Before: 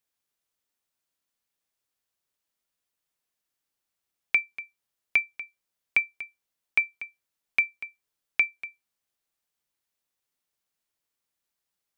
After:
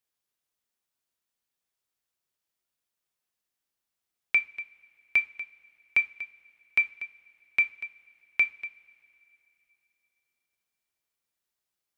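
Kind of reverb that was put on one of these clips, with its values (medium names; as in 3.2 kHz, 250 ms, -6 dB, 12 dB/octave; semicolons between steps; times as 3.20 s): two-slope reverb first 0.3 s, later 3.2 s, from -22 dB, DRR 8.5 dB; trim -2.5 dB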